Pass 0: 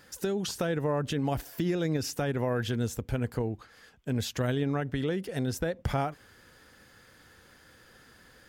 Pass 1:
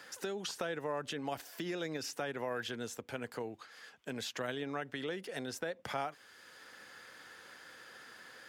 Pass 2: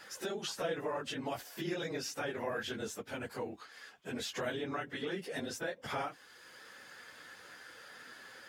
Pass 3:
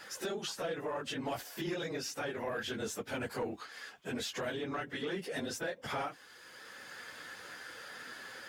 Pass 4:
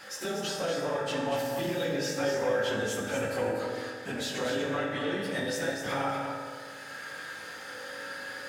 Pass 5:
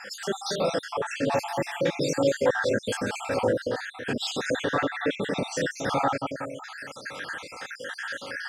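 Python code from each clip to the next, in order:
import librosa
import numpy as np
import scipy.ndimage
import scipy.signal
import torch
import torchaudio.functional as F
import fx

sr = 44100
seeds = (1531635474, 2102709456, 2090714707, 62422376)

y1 = fx.weighting(x, sr, curve='A')
y1 = fx.band_squash(y1, sr, depth_pct=40)
y1 = y1 * 10.0 ** (-4.0 / 20.0)
y2 = fx.phase_scramble(y1, sr, seeds[0], window_ms=50)
y2 = y2 * 10.0 ** (1.0 / 20.0)
y3 = fx.rider(y2, sr, range_db=3, speed_s=0.5)
y3 = 10.0 ** (-29.5 / 20.0) * np.tanh(y3 / 10.0 ** (-29.5 / 20.0))
y3 = y3 * 10.0 ** (2.0 / 20.0)
y4 = y3 + 10.0 ** (-6.5 / 20.0) * np.pad(y3, (int(242 * sr / 1000.0), 0))[:len(y3)]
y4 = fx.rev_fdn(y4, sr, rt60_s=1.9, lf_ratio=0.9, hf_ratio=0.55, size_ms=11.0, drr_db=-1.5)
y4 = y4 * 10.0 ** (2.0 / 20.0)
y5 = fx.spec_dropout(y4, sr, seeds[1], share_pct=59)
y5 = scipy.signal.sosfilt(scipy.signal.butter(2, 9000.0, 'lowpass', fs=sr, output='sos'), y5)
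y5 = y5 * 10.0 ** (7.5 / 20.0)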